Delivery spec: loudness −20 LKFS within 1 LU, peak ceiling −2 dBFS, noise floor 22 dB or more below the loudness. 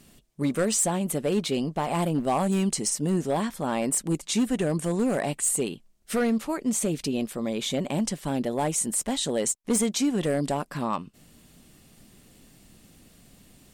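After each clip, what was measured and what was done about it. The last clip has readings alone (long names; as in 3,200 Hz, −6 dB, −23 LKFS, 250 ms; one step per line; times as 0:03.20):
share of clipped samples 1.0%; peaks flattened at −18.0 dBFS; integrated loudness −26.5 LKFS; sample peak −18.0 dBFS; target loudness −20.0 LKFS
→ clipped peaks rebuilt −18 dBFS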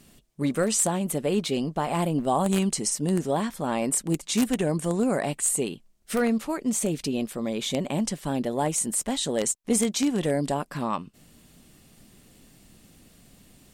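share of clipped samples 0.0%; integrated loudness −26.0 LKFS; sample peak −9.0 dBFS; target loudness −20.0 LKFS
→ level +6 dB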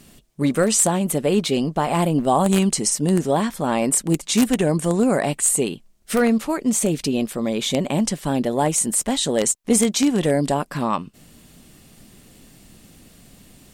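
integrated loudness −20.0 LKFS; sample peak −3.0 dBFS; background noise floor −52 dBFS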